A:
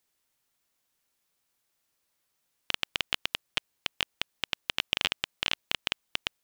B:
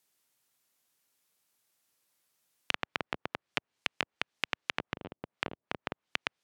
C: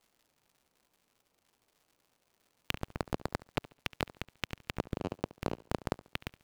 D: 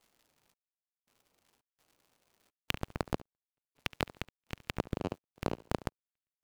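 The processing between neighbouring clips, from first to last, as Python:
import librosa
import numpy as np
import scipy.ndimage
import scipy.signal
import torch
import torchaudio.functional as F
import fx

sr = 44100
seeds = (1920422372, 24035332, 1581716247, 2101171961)

y1 = fx.env_lowpass_down(x, sr, base_hz=490.0, full_db=-31.0)
y1 = scipy.signal.sosfilt(scipy.signal.butter(2, 100.0, 'highpass', fs=sr, output='sos'), y1)
y1 = fx.high_shelf(y1, sr, hz=7300.0, db=4.5)
y2 = scipy.ndimage.median_filter(y1, 25, mode='constant')
y2 = fx.dmg_crackle(y2, sr, seeds[0], per_s=210.0, level_db=-65.0)
y2 = fx.echo_feedback(y2, sr, ms=70, feedback_pct=31, wet_db=-19.0)
y2 = F.gain(torch.from_numpy(y2), 9.5).numpy()
y3 = fx.step_gate(y2, sr, bpm=84, pattern='xxx...xxx.xxxx.', floor_db=-60.0, edge_ms=4.5)
y3 = F.gain(torch.from_numpy(y3), 1.0).numpy()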